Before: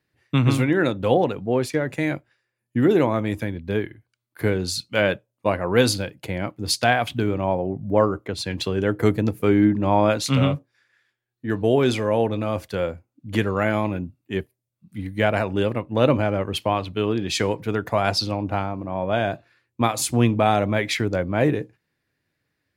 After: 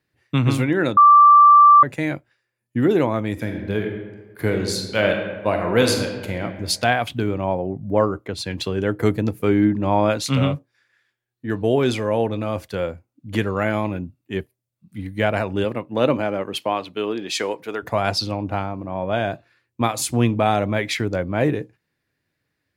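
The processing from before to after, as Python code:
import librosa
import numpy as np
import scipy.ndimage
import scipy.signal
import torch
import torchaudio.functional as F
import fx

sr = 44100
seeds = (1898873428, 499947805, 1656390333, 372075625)

y = fx.reverb_throw(x, sr, start_s=3.32, length_s=3.11, rt60_s=1.3, drr_db=3.0)
y = fx.highpass(y, sr, hz=fx.line((15.64, 130.0), (17.82, 410.0)), slope=12, at=(15.64, 17.82), fade=0.02)
y = fx.edit(y, sr, fx.bleep(start_s=0.97, length_s=0.86, hz=1170.0, db=-6.5), tone=tone)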